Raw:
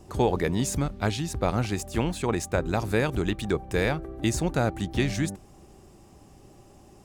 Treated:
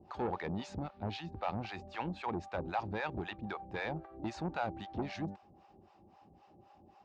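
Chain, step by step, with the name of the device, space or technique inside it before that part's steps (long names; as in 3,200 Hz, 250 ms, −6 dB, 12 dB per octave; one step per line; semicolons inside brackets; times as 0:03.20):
guitar amplifier with harmonic tremolo (two-band tremolo in antiphase 3.8 Hz, depth 100%, crossover 610 Hz; soft clipping −25.5 dBFS, distortion −11 dB; loudspeaker in its box 97–4,000 Hz, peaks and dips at 130 Hz −9 dB, 270 Hz −3 dB, 430 Hz −4 dB, 820 Hz +8 dB, 2,000 Hz −3 dB, 3,300 Hz −4 dB)
level −3 dB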